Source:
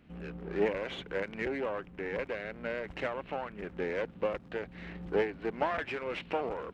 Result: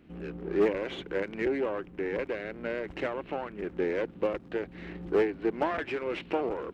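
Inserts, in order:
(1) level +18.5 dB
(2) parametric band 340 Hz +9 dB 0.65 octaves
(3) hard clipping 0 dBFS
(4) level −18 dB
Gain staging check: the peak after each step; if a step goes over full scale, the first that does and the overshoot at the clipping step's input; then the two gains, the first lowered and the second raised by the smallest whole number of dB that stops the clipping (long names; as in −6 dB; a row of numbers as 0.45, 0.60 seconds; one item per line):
+1.5, +5.0, 0.0, −18.0 dBFS
step 1, 5.0 dB
step 1 +13.5 dB, step 4 −13 dB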